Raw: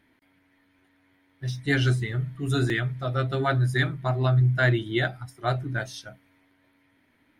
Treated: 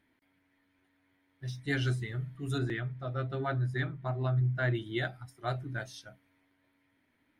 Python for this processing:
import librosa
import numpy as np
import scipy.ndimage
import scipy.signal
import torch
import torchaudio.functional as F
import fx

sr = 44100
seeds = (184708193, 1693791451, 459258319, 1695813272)

y = fx.lowpass(x, sr, hz=2100.0, slope=6, at=(2.58, 4.75))
y = y * librosa.db_to_amplitude(-8.0)